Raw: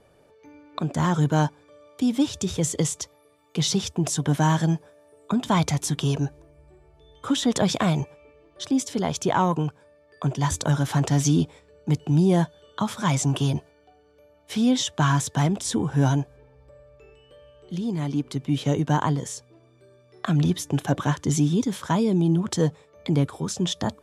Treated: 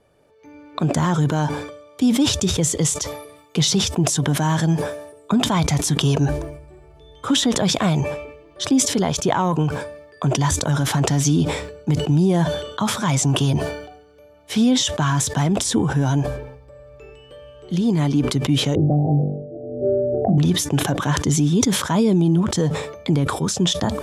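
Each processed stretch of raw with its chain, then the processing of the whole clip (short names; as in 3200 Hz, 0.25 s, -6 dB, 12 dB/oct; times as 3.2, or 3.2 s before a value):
18.75–20.38 Chebyshev low-pass 790 Hz, order 10 + flutter echo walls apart 3.5 m, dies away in 0.42 s + three-band squash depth 100%
whole clip: AGC gain up to 11.5 dB; maximiser +6.5 dB; sustainer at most 67 dB/s; gain -9 dB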